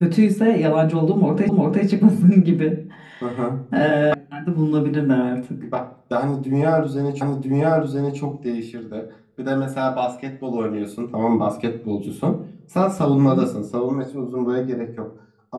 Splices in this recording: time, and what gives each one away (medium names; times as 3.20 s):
1.49 s: repeat of the last 0.36 s
4.14 s: sound stops dead
7.21 s: repeat of the last 0.99 s